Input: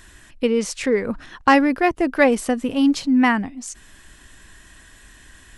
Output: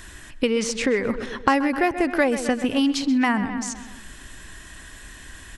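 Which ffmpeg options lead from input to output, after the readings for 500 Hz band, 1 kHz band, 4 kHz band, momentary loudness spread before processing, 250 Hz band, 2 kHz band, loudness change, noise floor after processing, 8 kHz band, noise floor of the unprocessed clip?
-3.0 dB, -3.5 dB, +1.5 dB, 12 LU, -3.0 dB, -2.5 dB, -3.5 dB, -43 dBFS, +1.0 dB, -49 dBFS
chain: -filter_complex "[0:a]asplit=2[a][b];[b]adelay=128,lowpass=f=3.6k:p=1,volume=-14dB,asplit=2[c][d];[d]adelay=128,lowpass=f=3.6k:p=1,volume=0.53,asplit=2[e][f];[f]adelay=128,lowpass=f=3.6k:p=1,volume=0.53,asplit=2[g][h];[h]adelay=128,lowpass=f=3.6k:p=1,volume=0.53,asplit=2[i][j];[j]adelay=128,lowpass=f=3.6k:p=1,volume=0.53[k];[c][e][g][i][k]amix=inputs=5:normalize=0[l];[a][l]amix=inputs=2:normalize=0,acrossover=split=1200|7500[m][n][o];[m]acompressor=threshold=-25dB:ratio=4[p];[n]acompressor=threshold=-31dB:ratio=4[q];[o]acompressor=threshold=-50dB:ratio=4[r];[p][q][r]amix=inputs=3:normalize=0,volume=5dB"

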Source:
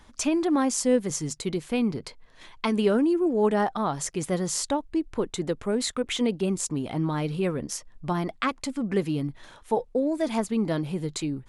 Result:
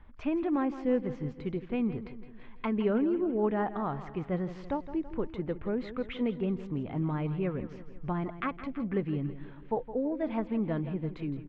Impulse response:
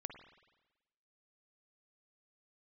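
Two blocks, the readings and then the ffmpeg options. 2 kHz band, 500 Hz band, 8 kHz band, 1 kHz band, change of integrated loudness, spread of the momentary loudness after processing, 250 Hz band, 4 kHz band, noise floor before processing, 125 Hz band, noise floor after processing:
-7.5 dB, -6.0 dB, under -40 dB, -6.5 dB, -5.5 dB, 9 LU, -5.0 dB, -17.5 dB, -54 dBFS, -3.0 dB, -48 dBFS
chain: -filter_complex "[0:a]lowpass=f=2.6k:w=0.5412,lowpass=f=2.6k:w=1.3066,lowshelf=f=110:g=11,asplit=2[a][b];[b]aecho=0:1:165|330|495|660|825:0.224|0.119|0.0629|0.0333|0.0177[c];[a][c]amix=inputs=2:normalize=0,volume=-7dB"

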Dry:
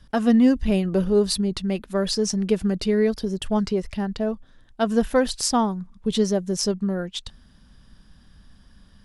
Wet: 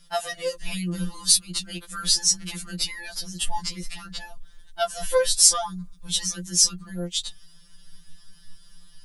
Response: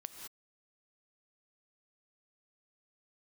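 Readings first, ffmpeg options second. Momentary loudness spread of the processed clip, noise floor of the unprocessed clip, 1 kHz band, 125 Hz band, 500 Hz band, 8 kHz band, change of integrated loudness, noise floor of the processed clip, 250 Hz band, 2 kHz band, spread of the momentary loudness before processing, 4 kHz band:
17 LU, -54 dBFS, -3.0 dB, -7.5 dB, -7.5 dB, +11.0 dB, -0.5 dB, -50 dBFS, -15.5 dB, -0.5 dB, 9 LU, +6.5 dB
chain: -af "asubboost=boost=5:cutoff=93,crystalizer=i=7.5:c=0,afftfilt=real='re*2.83*eq(mod(b,8),0)':imag='im*2.83*eq(mod(b,8),0)':win_size=2048:overlap=0.75,volume=-5dB"

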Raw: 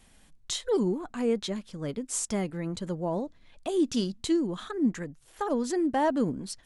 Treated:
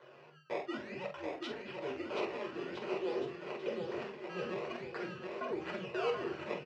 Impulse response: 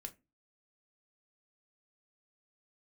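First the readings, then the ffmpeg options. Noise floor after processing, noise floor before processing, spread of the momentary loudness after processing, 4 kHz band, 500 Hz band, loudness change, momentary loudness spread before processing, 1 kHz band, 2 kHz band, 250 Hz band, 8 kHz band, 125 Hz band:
-58 dBFS, -59 dBFS, 6 LU, -9.5 dB, -7.0 dB, -10.0 dB, 9 LU, -8.0 dB, -0.5 dB, -15.0 dB, under -25 dB, -14.5 dB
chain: -filter_complex "[0:a]areverse,acompressor=threshold=-37dB:ratio=6,areverse,afreqshift=-160,acrusher=samples=17:mix=1:aa=0.000001:lfo=1:lforange=27.2:lforate=0.51,asoftclip=type=tanh:threshold=-35.5dB,highpass=360,equalizer=f=390:t=q:w=4:g=10,equalizer=f=580:t=q:w=4:g=5,equalizer=f=1.2k:t=q:w=4:g=4,equalizer=f=1.7k:t=q:w=4:g=4,equalizer=f=2.6k:t=q:w=4:g=8,equalizer=f=3.7k:t=q:w=4:g=-6,lowpass=f=4.8k:w=0.5412,lowpass=f=4.8k:w=1.3066,asplit=2[a][b];[b]adelay=46,volume=-7dB[c];[a][c]amix=inputs=2:normalize=0,aecho=1:1:730|1314|1781|2155|2454:0.631|0.398|0.251|0.158|0.1[d];[1:a]atrim=start_sample=2205,asetrate=61740,aresample=44100[e];[d][e]afir=irnorm=-1:irlink=0,volume=10dB"

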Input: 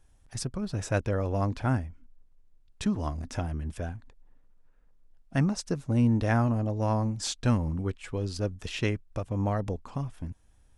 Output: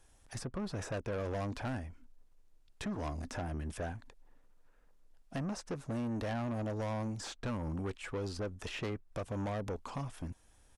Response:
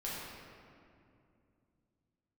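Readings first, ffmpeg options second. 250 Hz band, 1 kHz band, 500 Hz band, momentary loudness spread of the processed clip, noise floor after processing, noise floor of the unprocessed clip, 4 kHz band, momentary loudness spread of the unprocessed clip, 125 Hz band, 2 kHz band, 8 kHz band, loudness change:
-9.5 dB, -7.5 dB, -6.0 dB, 7 LU, -64 dBFS, -60 dBFS, -8.0 dB, 11 LU, -11.5 dB, -7.0 dB, -9.5 dB, -9.5 dB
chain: -filter_complex "[0:a]bass=f=250:g=-8,treble=f=4k:g=2,acrossover=split=630|2000[a][b][c];[a]acompressor=threshold=-34dB:ratio=4[d];[b]acompressor=threshold=-39dB:ratio=4[e];[c]acompressor=threshold=-53dB:ratio=4[f];[d][e][f]amix=inputs=3:normalize=0,asoftclip=type=tanh:threshold=-36dB,aresample=32000,aresample=44100,volume=3.5dB"

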